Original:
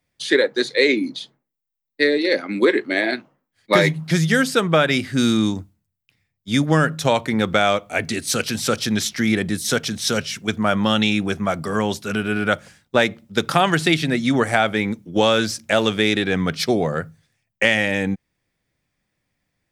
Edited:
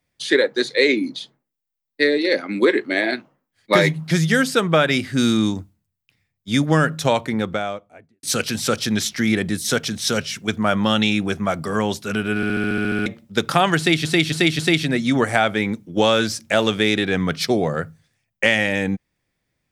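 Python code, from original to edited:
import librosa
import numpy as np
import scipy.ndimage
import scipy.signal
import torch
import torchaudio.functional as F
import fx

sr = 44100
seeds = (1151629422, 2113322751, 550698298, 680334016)

y = fx.studio_fade_out(x, sr, start_s=7.0, length_s=1.23)
y = fx.edit(y, sr, fx.stutter_over(start_s=12.36, slice_s=0.07, count=10),
    fx.repeat(start_s=13.78, length_s=0.27, count=4), tone=tone)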